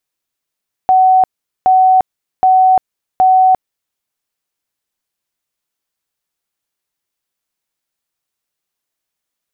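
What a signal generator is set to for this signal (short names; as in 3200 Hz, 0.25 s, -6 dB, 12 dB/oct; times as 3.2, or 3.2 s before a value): tone bursts 750 Hz, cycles 261, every 0.77 s, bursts 4, -5.5 dBFS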